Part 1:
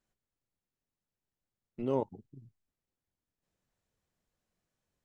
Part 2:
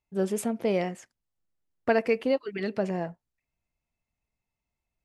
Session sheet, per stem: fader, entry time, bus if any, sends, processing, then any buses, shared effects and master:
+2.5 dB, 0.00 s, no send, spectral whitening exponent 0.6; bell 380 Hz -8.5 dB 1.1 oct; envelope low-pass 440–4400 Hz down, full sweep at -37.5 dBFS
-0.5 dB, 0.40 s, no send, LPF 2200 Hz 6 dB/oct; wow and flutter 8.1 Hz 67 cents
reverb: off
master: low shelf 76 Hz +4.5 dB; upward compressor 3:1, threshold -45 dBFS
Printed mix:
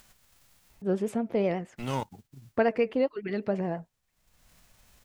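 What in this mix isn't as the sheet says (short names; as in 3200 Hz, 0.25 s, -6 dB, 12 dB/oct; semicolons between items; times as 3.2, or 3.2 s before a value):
stem 1: missing envelope low-pass 440–4400 Hz down, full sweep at -37.5 dBFS; stem 2: entry 0.40 s -> 0.70 s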